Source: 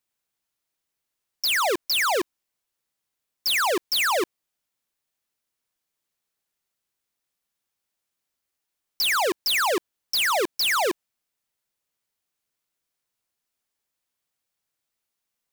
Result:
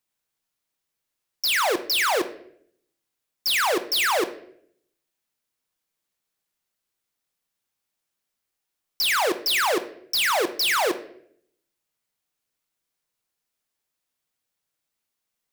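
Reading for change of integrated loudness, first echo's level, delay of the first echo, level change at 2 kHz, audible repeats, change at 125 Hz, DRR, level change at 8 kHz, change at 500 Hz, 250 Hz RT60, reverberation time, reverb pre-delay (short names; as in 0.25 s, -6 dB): +0.5 dB, none, none, +0.5 dB, none, n/a, 8.5 dB, +0.5 dB, +0.5 dB, 0.85 s, 0.65 s, 6 ms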